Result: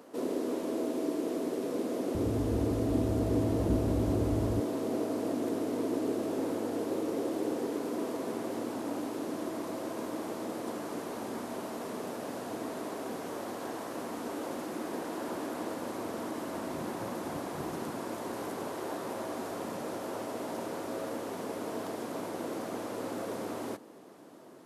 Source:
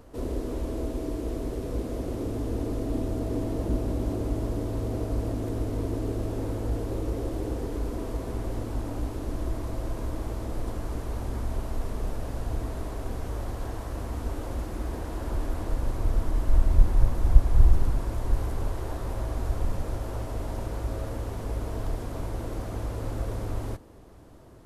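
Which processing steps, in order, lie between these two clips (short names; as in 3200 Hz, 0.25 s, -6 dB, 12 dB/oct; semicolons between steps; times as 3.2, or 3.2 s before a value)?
HPF 210 Hz 24 dB/oct, from 2.15 s 68 Hz, from 4.6 s 200 Hz; gain +1.5 dB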